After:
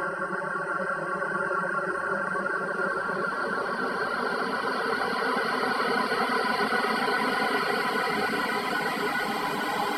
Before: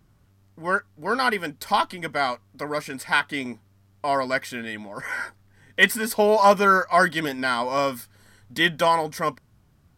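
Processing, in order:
extreme stretch with random phases 9.9×, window 1.00 s, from 0:00.54
reverb reduction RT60 0.73 s

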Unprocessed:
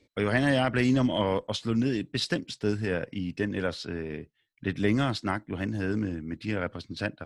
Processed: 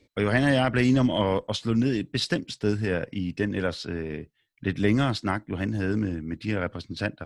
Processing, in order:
low-shelf EQ 130 Hz +3 dB
level +2 dB

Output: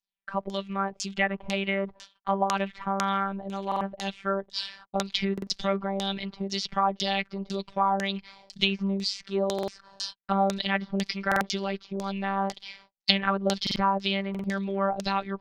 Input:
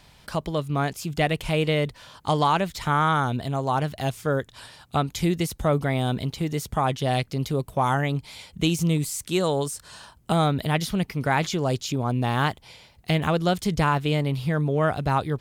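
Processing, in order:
parametric band 4,900 Hz −3.5 dB 0.82 octaves, from 0:04.53 +13.5 dB
treble cut that deepens with the level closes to 2,100 Hz, closed at −18 dBFS
surface crackle 39 per second −37 dBFS
noise gate −43 dBFS, range −42 dB
phases set to zero 196 Hz
auto-filter low-pass saw down 2 Hz 520–6,500 Hz
high-shelf EQ 2,600 Hz +11.5 dB
buffer that repeats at 0:03.67/0:05.33/0:09.54/0:11.27/0:13.62/0:14.30, samples 2,048, times 2
level −4.5 dB

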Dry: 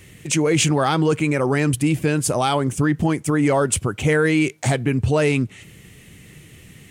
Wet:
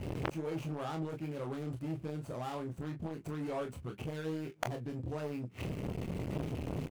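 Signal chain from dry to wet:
running median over 25 samples
gain into a clipping stage and back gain 14 dB
gate with flip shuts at −24 dBFS, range −30 dB
on a send: ambience of single reflections 25 ms −5 dB, 40 ms −11 dB
on the sum: saturating transformer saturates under 1,600 Hz
level +11.5 dB

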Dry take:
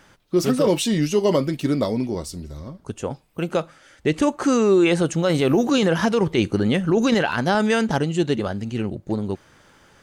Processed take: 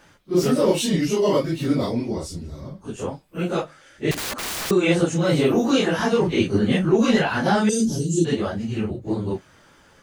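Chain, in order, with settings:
random phases in long frames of 100 ms
0:01.91–0:02.59: Bessel low-pass filter 11,000 Hz, order 2
0:04.11–0:04.71: wrap-around overflow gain 24 dB
0:07.69–0:08.25: drawn EQ curve 390 Hz 0 dB, 750 Hz −25 dB, 1,800 Hz −27 dB, 6,100 Hz +10 dB

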